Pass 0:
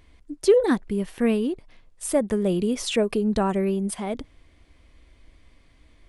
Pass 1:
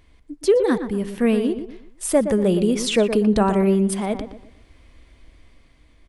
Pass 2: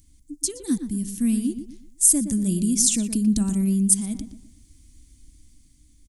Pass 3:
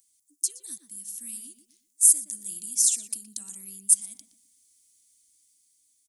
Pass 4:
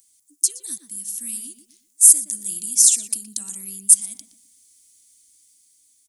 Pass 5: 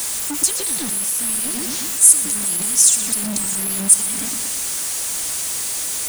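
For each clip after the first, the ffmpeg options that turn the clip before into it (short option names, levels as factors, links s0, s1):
-filter_complex "[0:a]dynaudnorm=f=300:g=7:m=1.68,asplit=2[s0][s1];[s1]adelay=119,lowpass=f=2100:p=1,volume=0.355,asplit=2[s2][s3];[s3]adelay=119,lowpass=f=2100:p=1,volume=0.35,asplit=2[s4][s5];[s5]adelay=119,lowpass=f=2100:p=1,volume=0.35,asplit=2[s6][s7];[s7]adelay=119,lowpass=f=2100:p=1,volume=0.35[s8];[s2][s4][s6][s8]amix=inputs=4:normalize=0[s9];[s0][s9]amix=inputs=2:normalize=0"
-af "firequalizer=gain_entry='entry(300,0);entry(430,-25);entry(6600,14)':delay=0.05:min_phase=1,volume=0.841"
-filter_complex "[0:a]acrossover=split=210|3000[s0][s1][s2];[s1]acompressor=threshold=0.0631:ratio=6[s3];[s0][s3][s2]amix=inputs=3:normalize=0,aderivative,volume=0.794"
-af "apsyclip=2.99,volume=0.841"
-af "aeval=exprs='val(0)+0.5*0.141*sgn(val(0))':c=same,volume=0.891"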